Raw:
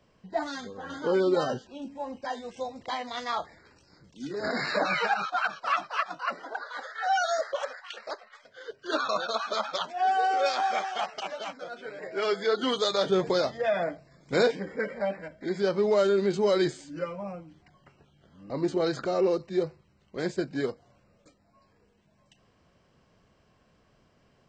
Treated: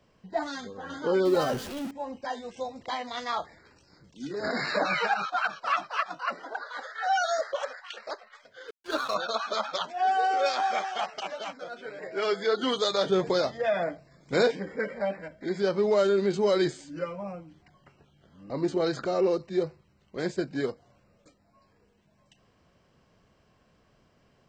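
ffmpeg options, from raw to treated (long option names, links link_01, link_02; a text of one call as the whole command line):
ffmpeg -i in.wav -filter_complex "[0:a]asettb=1/sr,asplit=3[link_01][link_02][link_03];[link_01]atrim=end=1.254[link_04];[link_02]atrim=start=1.25:end=1.91,asetpts=PTS-STARTPTS,afade=type=in:duration=0.004:curve=qsin,afade=type=out:start_time=0.656:duration=0.004:curve=qsin,aeval=exprs='val(0)+0.5*0.02*sgn(val(0))':channel_layout=same[link_05];[link_03]atrim=start=1.906[link_06];[link_04][link_05]acrossfade=duration=0.004:curve1=hsin:curve2=qsin[link_07];[link_07][link_06]acrossfade=duration=0.004:curve1=qsin:curve2=hsin,asplit=3[link_08][link_09][link_10];[link_08]afade=type=out:start_time=8.67:duration=0.02[link_11];[link_09]aeval=exprs='sgn(val(0))*max(abs(val(0))-0.00841,0)':channel_layout=same,afade=type=in:start_time=8.67:duration=0.02,afade=type=out:start_time=9.14:duration=0.02[link_12];[link_10]afade=type=in:start_time=9.14:duration=0.02[link_13];[link_11][link_12][link_13]amix=inputs=3:normalize=0" out.wav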